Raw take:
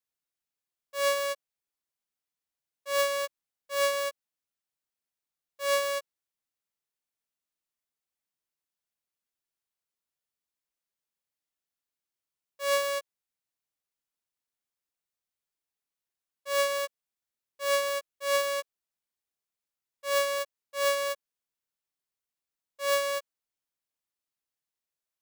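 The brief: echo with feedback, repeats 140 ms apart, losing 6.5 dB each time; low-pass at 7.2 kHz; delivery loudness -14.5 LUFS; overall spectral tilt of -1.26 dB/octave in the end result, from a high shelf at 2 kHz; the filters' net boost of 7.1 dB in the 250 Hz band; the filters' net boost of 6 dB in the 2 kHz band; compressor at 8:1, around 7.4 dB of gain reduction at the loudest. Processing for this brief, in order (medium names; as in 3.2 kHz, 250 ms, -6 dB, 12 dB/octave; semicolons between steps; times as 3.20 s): low-pass 7.2 kHz; peaking EQ 250 Hz +8 dB; treble shelf 2 kHz +4 dB; peaking EQ 2 kHz +5 dB; compression 8:1, threshold -26 dBFS; feedback delay 140 ms, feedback 47%, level -6.5 dB; trim +17.5 dB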